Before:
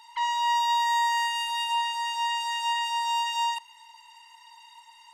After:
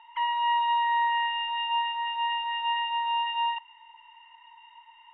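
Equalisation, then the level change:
elliptic low-pass filter 3,100 Hz, stop band 40 dB
0.0 dB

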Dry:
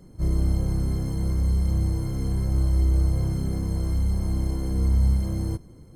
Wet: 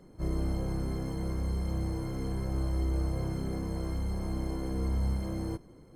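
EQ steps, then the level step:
bass and treble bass −8 dB, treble −8 dB
parametric band 82 Hz −4.5 dB 0.63 octaves
0.0 dB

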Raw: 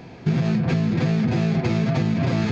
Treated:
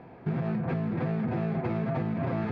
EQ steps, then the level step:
low-pass filter 1,200 Hz 12 dB per octave
low-shelf EQ 470 Hz −10.5 dB
0.0 dB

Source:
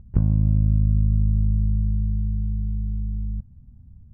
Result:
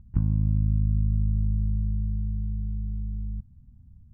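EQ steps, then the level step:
flat-topped bell 520 Hz −13.5 dB 1 octave
−4.5 dB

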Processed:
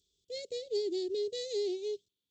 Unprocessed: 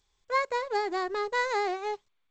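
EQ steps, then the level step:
high-pass filter 89 Hz 12 dB per octave
elliptic band-stop filter 430–3,300 Hz, stop band 80 dB
0.0 dB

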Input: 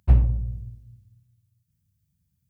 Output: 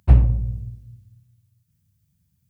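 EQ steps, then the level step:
high-pass filter 54 Hz
+5.5 dB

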